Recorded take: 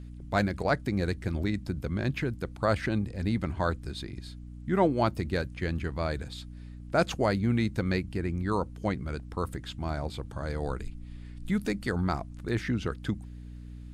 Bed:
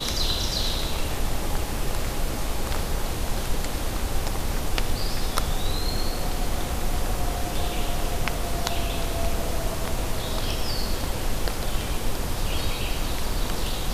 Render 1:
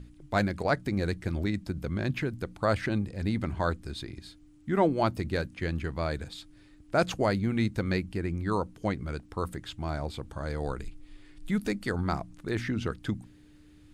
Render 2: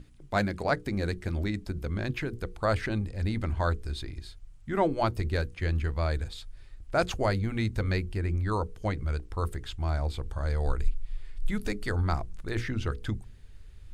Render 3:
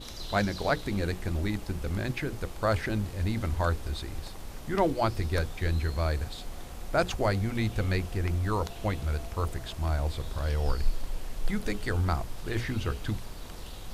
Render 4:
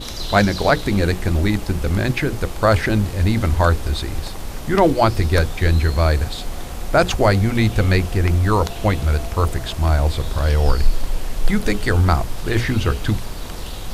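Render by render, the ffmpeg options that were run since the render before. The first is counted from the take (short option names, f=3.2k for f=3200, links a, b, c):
-af "bandreject=f=60:t=h:w=4,bandreject=f=120:t=h:w=4,bandreject=f=180:t=h:w=4,bandreject=f=240:t=h:w=4"
-af "bandreject=f=60:t=h:w=6,bandreject=f=120:t=h:w=6,bandreject=f=180:t=h:w=6,bandreject=f=240:t=h:w=6,bandreject=f=300:t=h:w=6,bandreject=f=360:t=h:w=6,bandreject=f=420:t=h:w=6,bandreject=f=480:t=h:w=6,asubboost=boost=7:cutoff=65"
-filter_complex "[1:a]volume=-15.5dB[a];[0:a][a]amix=inputs=2:normalize=0"
-af "volume=12dB,alimiter=limit=-3dB:level=0:latency=1"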